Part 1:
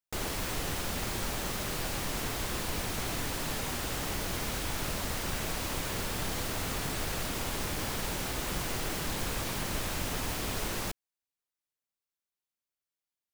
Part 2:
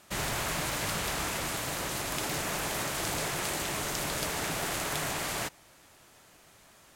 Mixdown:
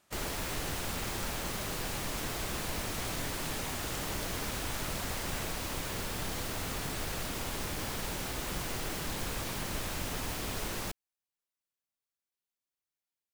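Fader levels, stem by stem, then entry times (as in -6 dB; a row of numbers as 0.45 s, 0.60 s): -2.5 dB, -12.0 dB; 0.00 s, 0.00 s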